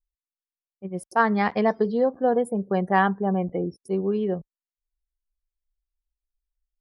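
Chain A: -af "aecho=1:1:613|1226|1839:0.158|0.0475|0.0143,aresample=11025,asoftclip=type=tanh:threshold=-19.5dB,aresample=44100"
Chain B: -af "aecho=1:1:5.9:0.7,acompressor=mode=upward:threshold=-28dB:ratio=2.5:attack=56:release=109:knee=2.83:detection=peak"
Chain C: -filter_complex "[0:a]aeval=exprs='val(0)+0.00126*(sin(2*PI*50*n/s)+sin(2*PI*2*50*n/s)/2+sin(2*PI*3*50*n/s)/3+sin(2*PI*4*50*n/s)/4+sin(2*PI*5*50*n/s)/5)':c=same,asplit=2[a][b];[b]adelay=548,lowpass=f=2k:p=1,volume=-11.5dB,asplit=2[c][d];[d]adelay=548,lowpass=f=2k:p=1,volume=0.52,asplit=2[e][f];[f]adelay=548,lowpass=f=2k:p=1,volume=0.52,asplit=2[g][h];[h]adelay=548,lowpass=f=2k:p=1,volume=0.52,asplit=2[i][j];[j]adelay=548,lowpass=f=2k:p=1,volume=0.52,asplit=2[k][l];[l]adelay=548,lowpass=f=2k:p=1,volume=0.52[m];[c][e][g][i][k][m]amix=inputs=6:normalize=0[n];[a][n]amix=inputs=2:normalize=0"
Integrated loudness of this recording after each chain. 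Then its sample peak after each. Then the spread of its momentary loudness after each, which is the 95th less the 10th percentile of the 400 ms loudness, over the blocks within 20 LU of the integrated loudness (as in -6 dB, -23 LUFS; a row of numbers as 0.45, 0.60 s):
-27.5, -22.5, -24.0 LUFS; -18.0, -6.5, -7.0 dBFS; 16, 8, 19 LU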